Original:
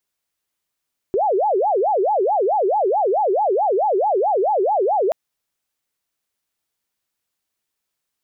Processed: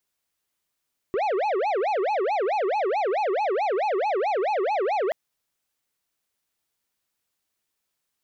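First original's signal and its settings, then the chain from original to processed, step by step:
siren wail 369–863 Hz 4.6 per second sine −15 dBFS 3.98 s
soft clipping −22.5 dBFS

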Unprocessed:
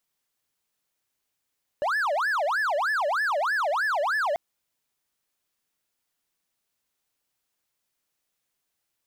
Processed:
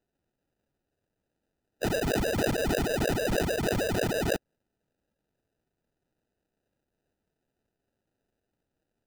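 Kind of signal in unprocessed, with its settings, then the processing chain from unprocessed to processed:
siren wail 567–1,750 Hz 3.2 per second triangle −20.5 dBFS 2.54 s
ceiling on every frequency bin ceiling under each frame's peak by 20 dB
flat-topped bell 5,900 Hz −13.5 dB
sample-rate reduction 1,100 Hz, jitter 0%

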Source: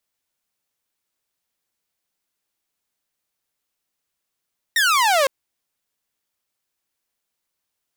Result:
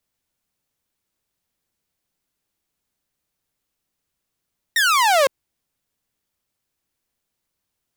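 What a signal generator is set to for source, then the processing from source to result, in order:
single falling chirp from 1,900 Hz, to 520 Hz, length 0.51 s saw, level −12 dB
low-shelf EQ 320 Hz +10.5 dB

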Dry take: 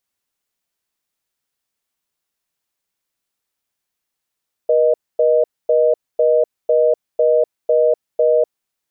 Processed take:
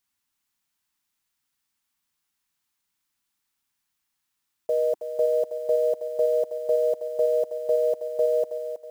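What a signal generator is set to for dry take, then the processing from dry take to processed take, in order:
call progress tone reorder tone, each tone −13.5 dBFS 3.91 s
one scale factor per block 7 bits
flat-topped bell 510 Hz −9 dB 1.1 octaves
feedback echo with a high-pass in the loop 321 ms, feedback 41%, high-pass 420 Hz, level −7.5 dB

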